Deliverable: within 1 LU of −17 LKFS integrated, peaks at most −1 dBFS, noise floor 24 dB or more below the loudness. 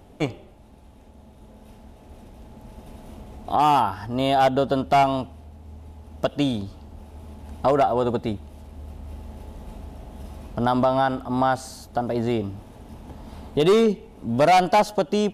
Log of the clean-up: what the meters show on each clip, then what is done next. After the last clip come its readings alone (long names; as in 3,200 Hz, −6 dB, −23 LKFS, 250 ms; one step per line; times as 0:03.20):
integrated loudness −22.0 LKFS; sample peak −9.0 dBFS; target loudness −17.0 LKFS
→ level +5 dB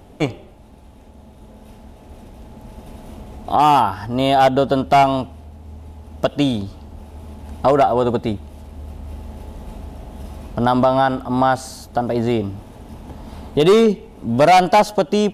integrated loudness −17.0 LKFS; sample peak −4.0 dBFS; background noise floor −44 dBFS